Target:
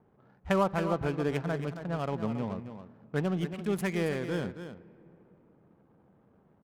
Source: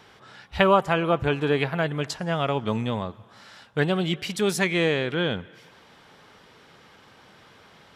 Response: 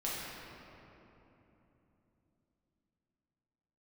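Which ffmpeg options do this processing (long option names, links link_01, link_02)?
-filter_complex "[0:a]firequalizer=gain_entry='entry(110,0);entry(190,4);entry(380,0);entry(4700,-10);entry(12000,13)':delay=0.05:min_phase=1,adynamicsmooth=sensitivity=6.5:basefreq=520,atempo=1.2,aecho=1:1:275:0.316,asplit=2[link_01][link_02];[1:a]atrim=start_sample=2205,lowpass=5000[link_03];[link_02][link_03]afir=irnorm=-1:irlink=0,volume=-24dB[link_04];[link_01][link_04]amix=inputs=2:normalize=0,volume=-8dB"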